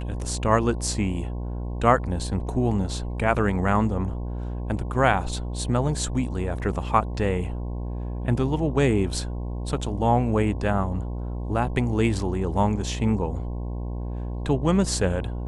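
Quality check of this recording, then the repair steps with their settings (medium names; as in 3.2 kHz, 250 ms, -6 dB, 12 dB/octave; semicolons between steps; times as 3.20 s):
buzz 60 Hz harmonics 18 -30 dBFS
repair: de-hum 60 Hz, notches 18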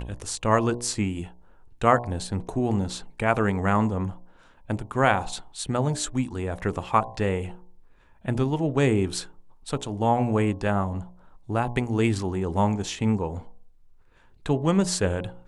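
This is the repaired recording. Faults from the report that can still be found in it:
nothing left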